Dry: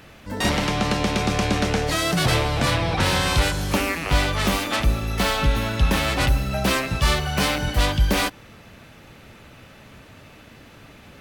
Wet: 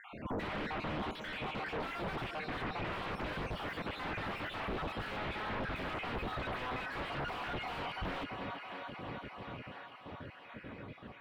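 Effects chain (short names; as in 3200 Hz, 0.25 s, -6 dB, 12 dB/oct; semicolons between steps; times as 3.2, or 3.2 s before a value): random spectral dropouts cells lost 55%; Doppler pass-by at 4.5, 15 m/s, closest 4.4 m; HPF 140 Hz 6 dB/oct; reverse; compressor, threshold -48 dBFS, peak gain reduction 25 dB; reverse; limiter -47 dBFS, peak gain reduction 11 dB; thinning echo 0.334 s, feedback 79%, high-pass 220 Hz, level -15 dB; sine folder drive 12 dB, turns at -45 dBFS; air absorption 490 m; gain +13.5 dB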